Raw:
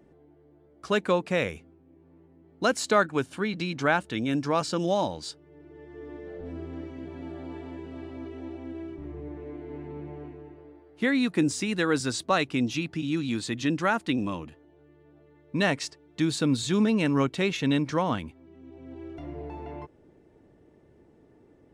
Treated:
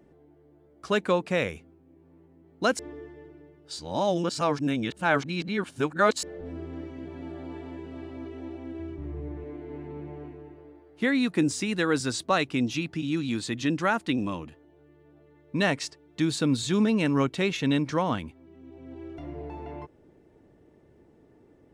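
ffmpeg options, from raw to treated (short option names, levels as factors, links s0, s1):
-filter_complex "[0:a]asettb=1/sr,asplit=3[s0][s1][s2];[s0]atrim=end=8.794[s3];[s1]atrim=start=8.79:end=9.44,asetpts=PTS-STARTPTS,afade=t=in:d=0.004:c=qsin,afade=t=out:st=0.646:d=0.004:c=qsin,equalizer=f=93:w=1.5:g=9[s4];[s2]atrim=start=9.436[s5];[s3][s4]acrossfade=d=0.004:c1=hsin:c2=qsin[s6];[s6][s5]acrossfade=d=0.004:c1=qsin:c2=hsin,asplit=3[s7][s8][s9];[s7]atrim=end=2.792[s10];[s8]atrim=start=2.788:end=6.232,asetpts=PTS-STARTPTS,areverse[s11];[s9]atrim=start=6.228[s12];[s10][s11]acrossfade=d=0.004:c1=hsin:c2=hsin[s13];[s13][s12]acrossfade=d=0.004:c1=hsin:c2=hsin"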